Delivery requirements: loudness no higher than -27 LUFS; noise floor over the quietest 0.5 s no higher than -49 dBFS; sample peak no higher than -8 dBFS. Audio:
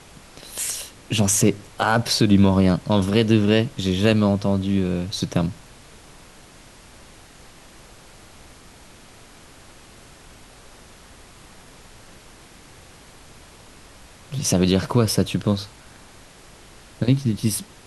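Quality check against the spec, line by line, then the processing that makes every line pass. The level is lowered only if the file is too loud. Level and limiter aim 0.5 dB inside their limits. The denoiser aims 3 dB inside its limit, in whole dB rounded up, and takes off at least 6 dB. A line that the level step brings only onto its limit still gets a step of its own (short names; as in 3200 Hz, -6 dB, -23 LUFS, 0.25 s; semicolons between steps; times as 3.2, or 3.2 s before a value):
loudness -20.5 LUFS: fail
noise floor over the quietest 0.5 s -47 dBFS: fail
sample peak -5.0 dBFS: fail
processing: gain -7 dB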